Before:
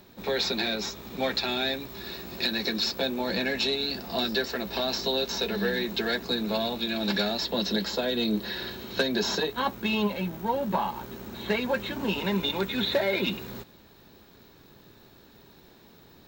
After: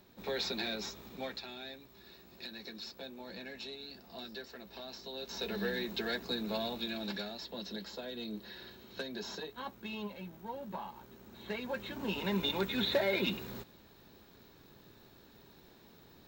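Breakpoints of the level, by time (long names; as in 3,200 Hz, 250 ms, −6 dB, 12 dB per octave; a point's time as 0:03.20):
0:01.03 −8.5 dB
0:01.51 −18 dB
0:05.09 −18 dB
0:05.49 −8 dB
0:06.85 −8 dB
0:07.30 −15 dB
0:11.20 −15 dB
0:12.46 −5 dB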